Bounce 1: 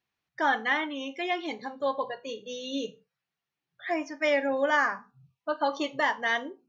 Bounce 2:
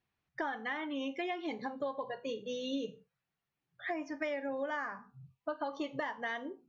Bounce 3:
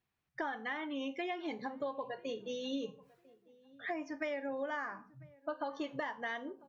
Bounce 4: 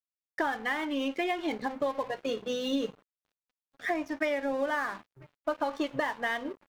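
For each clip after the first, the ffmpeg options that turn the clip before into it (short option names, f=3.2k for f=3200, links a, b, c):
-af "highshelf=f=3.8k:g=-9,acompressor=threshold=-34dB:ratio=10,lowshelf=f=140:g=9"
-filter_complex "[0:a]areverse,acompressor=mode=upward:threshold=-58dB:ratio=2.5,areverse,asplit=2[a][b];[b]adelay=997,lowpass=f=1.2k:p=1,volume=-22.5dB,asplit=2[c][d];[d]adelay=997,lowpass=f=1.2k:p=1,volume=0.31[e];[a][c][e]amix=inputs=3:normalize=0,volume=-1.5dB"
-af "aeval=exprs='sgn(val(0))*max(abs(val(0))-0.00188,0)':c=same,volume=9dB"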